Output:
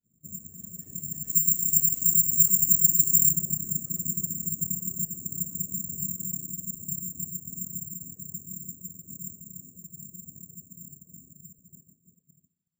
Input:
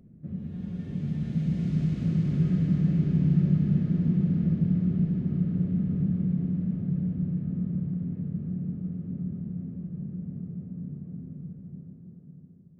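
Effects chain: careless resampling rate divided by 6×, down filtered, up zero stuff; expander -35 dBFS; reverb removal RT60 1.5 s; 1.28–3.31 s: treble shelf 2 kHz +10 dB; tape noise reduction on one side only decoder only; trim -11 dB

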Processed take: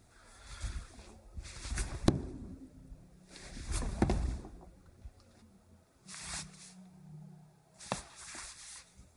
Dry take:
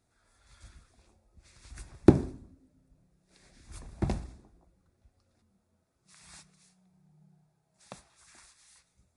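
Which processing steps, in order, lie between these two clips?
compression 8:1, threshold -36 dBFS, peak gain reduction 24.5 dB; flange 1.4 Hz, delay 0.1 ms, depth 5.4 ms, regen +63%; trim +15 dB

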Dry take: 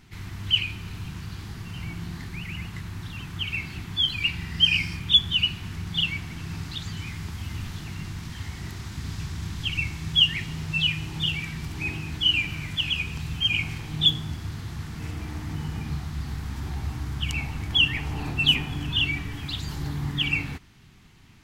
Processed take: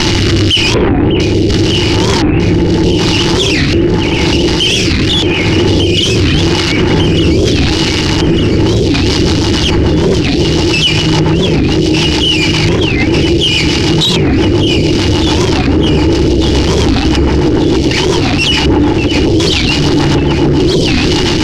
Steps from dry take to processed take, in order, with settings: one-bit comparator; small resonant body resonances 330/860/2900 Hz, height 13 dB, ringing for 45 ms; LFO low-pass square 0.67 Hz 470–5000 Hz; echo whose repeats swap between lows and highs 599 ms, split 2.2 kHz, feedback 73%, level -3 dB; rotary cabinet horn 0.85 Hz, later 7 Hz, at 8.34 s; loudness maximiser +23 dB; warped record 45 rpm, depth 250 cents; trim -1 dB

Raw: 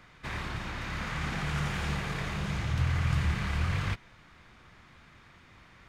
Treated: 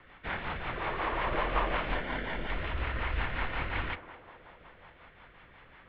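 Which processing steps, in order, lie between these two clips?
0.76–1.76 s: time-frequency box 500–1400 Hz +7 dB; 1.94–2.50 s: comb of notches 1.4 kHz; mistuned SSB -190 Hz 150–3500 Hz; band-passed feedback delay 210 ms, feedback 74%, band-pass 580 Hz, level -10.5 dB; rotary cabinet horn 5.5 Hz; trim +5 dB

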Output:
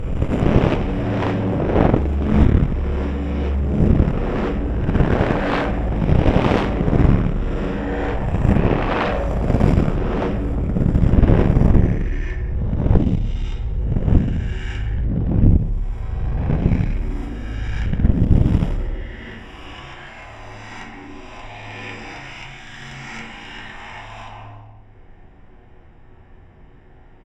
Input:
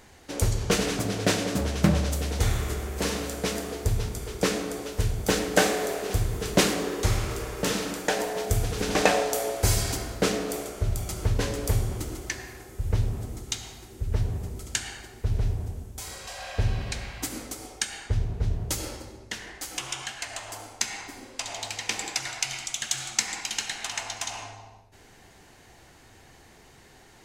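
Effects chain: reverse spectral sustain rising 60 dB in 2.38 s; tilt EQ -2.5 dB/octave; Chebyshev shaper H 7 -31 dB, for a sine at -3 dBFS; Savitzky-Golay filter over 25 samples; feedback delay 88 ms, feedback 58%, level -18 dB; simulated room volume 58 m³, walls mixed, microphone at 0.65 m; Chebyshev shaper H 7 -8 dB, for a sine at 7 dBFS; trim -9.5 dB

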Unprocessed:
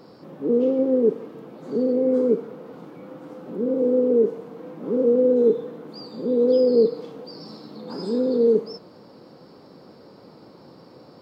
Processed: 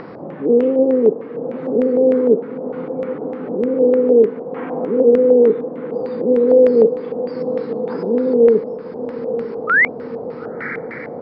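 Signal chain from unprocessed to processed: time-frequency box 4.55–4.85 s, 660–3500 Hz +9 dB; in parallel at +2 dB: upward compressor, threshold -24 dBFS; on the sum: painted sound rise, 9.67–9.88 s, 1.2–2.4 kHz -15 dBFS; echo that smears into a reverb 951 ms, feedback 62%, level -12 dB; LFO low-pass square 3.3 Hz 720–2000 Hz; trim -3.5 dB

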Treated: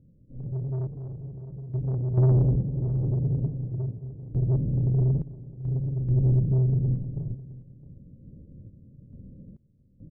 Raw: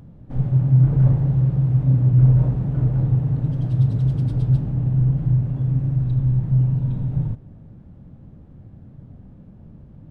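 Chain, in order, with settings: elliptic low-pass 550 Hz, stop band 40 dB; saturation -18.5 dBFS, distortion -10 dB; random-step tremolo 2.3 Hz, depth 95%; delay 661 ms -18 dB; trim +2 dB

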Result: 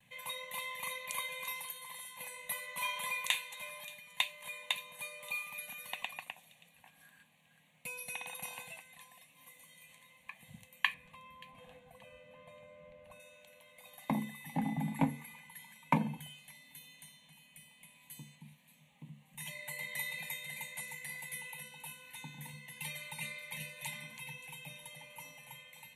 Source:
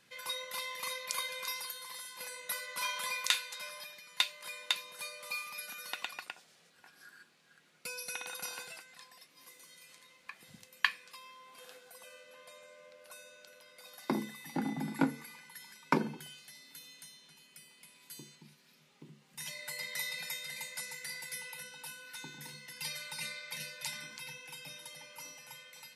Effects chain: 10.94–13.20 s: RIAA curve playback; gate with hold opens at -59 dBFS; bass shelf 240 Hz +9 dB; static phaser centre 1.4 kHz, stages 6; feedback echo behind a high-pass 578 ms, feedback 30%, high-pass 3.7 kHz, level -16 dB; trim +1 dB

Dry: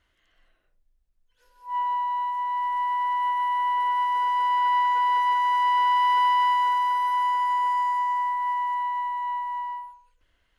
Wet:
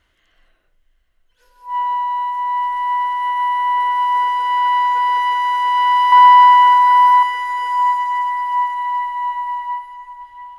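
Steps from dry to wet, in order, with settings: 6.12–7.23 s: peaking EQ 1.1 kHz +7.5 dB 1.9 oct; echo that smears into a reverb 685 ms, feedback 44%, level -13 dB; trim +6.5 dB

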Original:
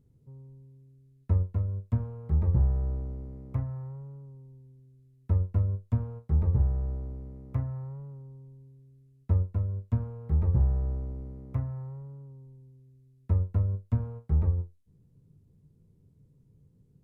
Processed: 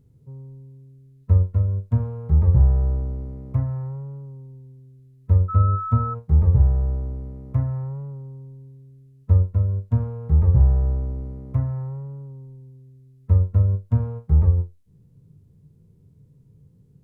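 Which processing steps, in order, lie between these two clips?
5.48–6.13 s: whistle 1.3 kHz -35 dBFS; harmonic-percussive split harmonic +9 dB

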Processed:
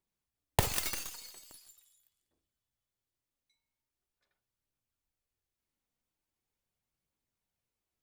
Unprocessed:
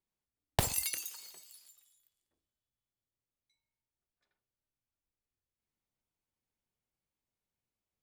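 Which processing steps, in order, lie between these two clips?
tracing distortion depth 0.24 ms; phaser 0.42 Hz, delay 4.3 ms, feedback 26%; trim +1.5 dB

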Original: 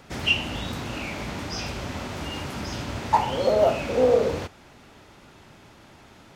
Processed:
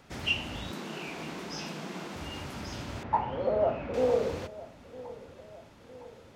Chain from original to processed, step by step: 0.71–2.16 s: frequency shift +100 Hz; 3.03–3.94 s: low-pass 1.8 kHz 12 dB/octave; filtered feedback delay 958 ms, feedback 60%, low-pass 1.2 kHz, level -17 dB; trim -7 dB

